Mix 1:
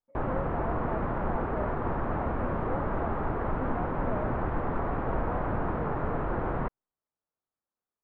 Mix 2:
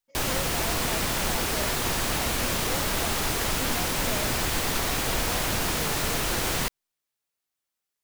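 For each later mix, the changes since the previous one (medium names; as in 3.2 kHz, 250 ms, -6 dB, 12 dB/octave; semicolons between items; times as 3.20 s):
master: remove low-pass 1.3 kHz 24 dB/octave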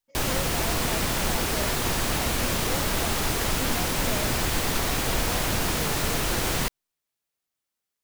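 master: add bass shelf 420 Hz +3 dB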